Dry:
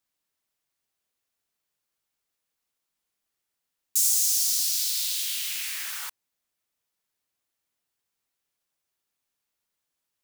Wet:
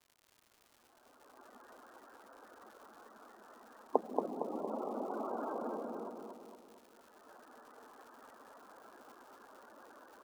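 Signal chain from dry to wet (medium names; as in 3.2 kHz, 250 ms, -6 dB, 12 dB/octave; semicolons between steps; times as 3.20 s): dead-time distortion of 0.068 ms; recorder AGC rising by 21 dB/s; low-pass 1.6 kHz 24 dB/octave; reverb removal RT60 0.54 s; Chebyshev high-pass 220 Hz, order 4; low-pass that closes with the level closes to 410 Hz, closed at -46 dBFS; loudest bins only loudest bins 32; crackle 160 per s -65 dBFS; feedback delay 230 ms, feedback 52%, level -4 dB; trim +14.5 dB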